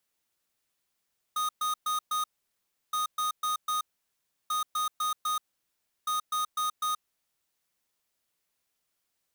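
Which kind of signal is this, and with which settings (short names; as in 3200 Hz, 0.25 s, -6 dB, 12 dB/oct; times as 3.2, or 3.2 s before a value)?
beep pattern square 1240 Hz, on 0.13 s, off 0.12 s, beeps 4, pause 0.69 s, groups 4, -29 dBFS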